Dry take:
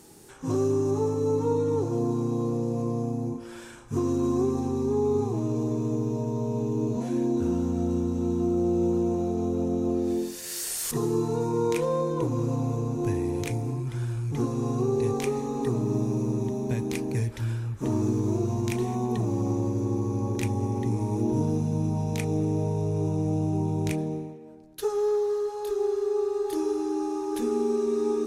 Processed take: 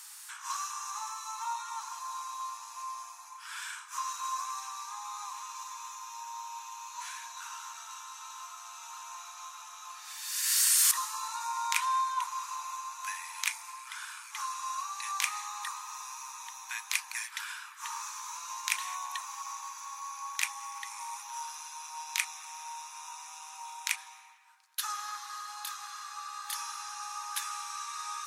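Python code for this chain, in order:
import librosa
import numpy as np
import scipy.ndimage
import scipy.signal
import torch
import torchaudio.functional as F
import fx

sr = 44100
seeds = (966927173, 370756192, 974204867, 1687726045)

y = scipy.signal.sosfilt(scipy.signal.butter(12, 970.0, 'highpass', fs=sr, output='sos'), x)
y = y * 10.0 ** (7.5 / 20.0)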